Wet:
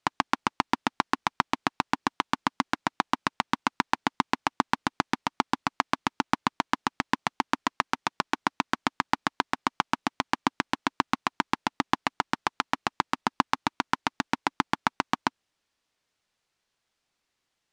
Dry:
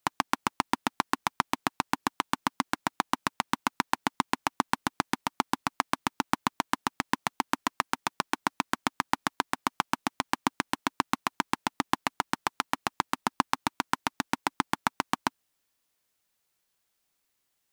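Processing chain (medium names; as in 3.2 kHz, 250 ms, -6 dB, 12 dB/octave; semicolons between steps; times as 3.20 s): low-pass 5.7 kHz 12 dB/octave; trim +2 dB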